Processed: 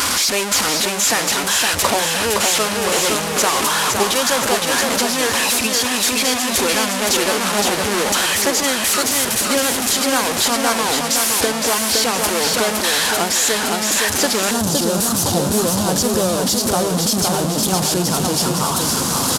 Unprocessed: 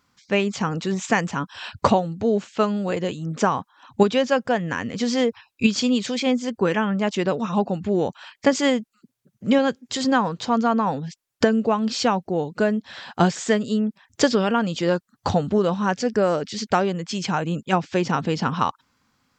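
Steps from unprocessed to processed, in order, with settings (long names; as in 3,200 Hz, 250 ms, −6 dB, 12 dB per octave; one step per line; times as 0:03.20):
linear delta modulator 64 kbit/s, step −13.5 dBFS
high-pass filter 100 Hz 6 dB per octave
high-shelf EQ 5,600 Hz +7 dB
repeating echo 514 ms, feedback 47%, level −4 dB
speech leveller 0.5 s
parametric band 150 Hz −13 dB 1.1 octaves, from 0:14.51 2,100 Hz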